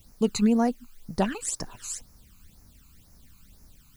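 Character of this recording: a quantiser's noise floor 10-bit, dither triangular; phasing stages 12, 2 Hz, lowest notch 560–3300 Hz

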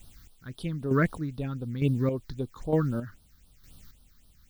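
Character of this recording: a quantiser's noise floor 10-bit, dither triangular; phasing stages 6, 3.8 Hz, lowest notch 660–2100 Hz; chopped level 1.1 Hz, depth 60%, duty 30%

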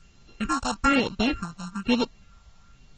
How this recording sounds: a buzz of ramps at a fixed pitch in blocks of 32 samples; phasing stages 4, 1.1 Hz, lowest notch 330–1800 Hz; a quantiser's noise floor 10-bit, dither triangular; AAC

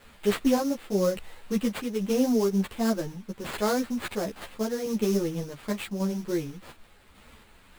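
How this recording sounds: a quantiser's noise floor 10-bit, dither triangular; random-step tremolo; aliases and images of a low sample rate 5.9 kHz, jitter 20%; a shimmering, thickened sound

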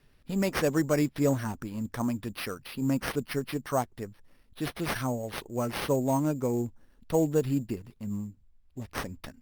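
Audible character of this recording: aliases and images of a low sample rate 7.3 kHz, jitter 0%; Opus

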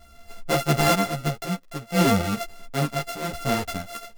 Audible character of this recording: a buzz of ramps at a fixed pitch in blocks of 64 samples; random-step tremolo 2.1 Hz, depth 70%; a shimmering, thickened sound

